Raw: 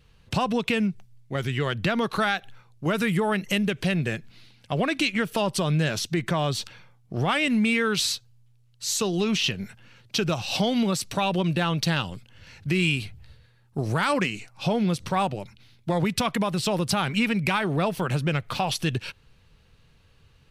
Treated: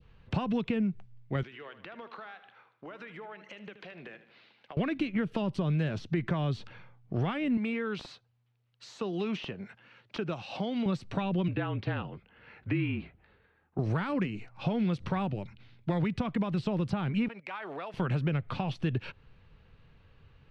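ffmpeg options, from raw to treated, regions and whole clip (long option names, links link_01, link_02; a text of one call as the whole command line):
ffmpeg -i in.wav -filter_complex "[0:a]asettb=1/sr,asplit=3[link_01][link_02][link_03];[link_01]atrim=end=1.434[link_04];[link_02]atrim=start=1.43:end=4.77,asetpts=PTS-STARTPTS,afade=type=in:duration=0.004:curve=qsin,afade=type=out:start_time=3.336:duration=0.004:curve=qsin,highpass=430,lowpass=5600,acompressor=threshold=-41dB:ratio=8:attack=3.2:release=140:knee=1:detection=peak,aecho=1:1:77|154|231|308|385:0.224|0.116|0.0605|0.0315|0.0164,atrim=end_sample=147294[link_05];[link_03]atrim=start=4.766[link_06];[link_04][link_05]acrossfade=duration=0.004:curve1=hsin:curve2=qsin[link_07];[link_07][link_06]acrossfade=duration=0.004:curve1=qsin:curve2=hsin,asettb=1/sr,asplit=3[link_08][link_09][link_10];[link_08]atrim=end=7.574[link_11];[link_09]atrim=start=7.57:end=10.86,asetpts=PTS-STARTPTS,afade=type=in:duration=0.004:curve=qsin,afade=type=out:start_time=3.286:duration=0.004:curve=qsin,highpass=frequency=470:poles=1,aeval=exprs='(mod(5.01*val(0)+1,2)-1)/5.01':channel_layout=same[link_12];[link_10]atrim=start=10.856[link_13];[link_11][link_12]acrossfade=duration=0.004:curve1=hsin:curve2=qsin[link_14];[link_14][link_13]acrossfade=duration=0.004:curve1=qsin:curve2=hsin,asettb=1/sr,asplit=3[link_15][link_16][link_17];[link_15]atrim=end=11.484[link_18];[link_16]atrim=start=11.48:end=13.79,asetpts=PTS-STARTPTS,afade=type=in:duration=0.004:curve=qsin,afade=type=out:start_time=2.306:duration=0.004:curve=qsin,afreqshift=-39,highpass=170,lowpass=2500,asplit=2[link_19][link_20];[link_20]adelay=19,volume=-13.5dB[link_21];[link_19][link_21]amix=inputs=2:normalize=0,atrim=end_sample=101871[link_22];[link_17]atrim=start=13.786[link_23];[link_18][link_22]acrossfade=duration=0.004:curve1=hsin:curve2=qsin[link_24];[link_24][link_23]acrossfade=duration=0.004:curve1=qsin:curve2=hsin,asettb=1/sr,asplit=3[link_25][link_26][link_27];[link_25]atrim=end=17.284[link_28];[link_26]atrim=start=17.28:end=17.94,asetpts=PTS-STARTPTS,afade=type=in:duration=0.004:curve=qsin,afade=type=out:start_time=0.656:duration=0.004:curve=qsin,highpass=640,agate=range=-11dB:threshold=-42dB:ratio=16:release=100:detection=peak,acompressor=threshold=-34dB:ratio=2.5:attack=3.2:release=140:knee=1:detection=peak[link_29];[link_27]atrim=start=17.936[link_30];[link_28][link_29]acrossfade=duration=0.004:curve1=hsin:curve2=qsin[link_31];[link_31][link_30]acrossfade=duration=0.004:curve1=qsin:curve2=hsin,acrossover=split=360|1400[link_32][link_33][link_34];[link_32]acompressor=threshold=-27dB:ratio=4[link_35];[link_33]acompressor=threshold=-39dB:ratio=4[link_36];[link_34]acompressor=threshold=-38dB:ratio=4[link_37];[link_35][link_36][link_37]amix=inputs=3:normalize=0,lowpass=2500,adynamicequalizer=threshold=0.00562:dfrequency=1700:dqfactor=0.85:tfrequency=1700:tqfactor=0.85:attack=5:release=100:ratio=0.375:range=1.5:mode=cutabove:tftype=bell" out.wav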